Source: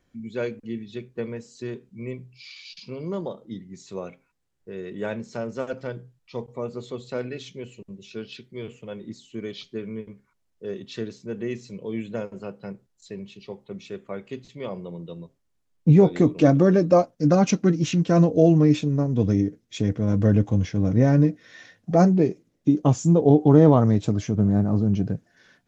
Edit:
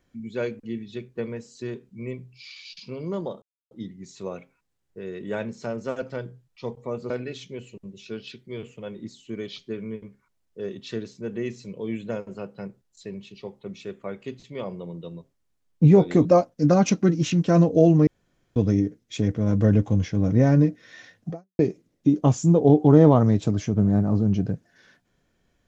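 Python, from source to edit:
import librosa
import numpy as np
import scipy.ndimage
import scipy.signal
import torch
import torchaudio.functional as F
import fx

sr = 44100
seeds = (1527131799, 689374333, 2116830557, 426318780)

y = fx.edit(x, sr, fx.insert_silence(at_s=3.42, length_s=0.29),
    fx.cut(start_s=6.81, length_s=0.34),
    fx.cut(start_s=16.3, length_s=0.56),
    fx.room_tone_fill(start_s=18.68, length_s=0.49),
    fx.fade_out_span(start_s=21.91, length_s=0.29, curve='exp'), tone=tone)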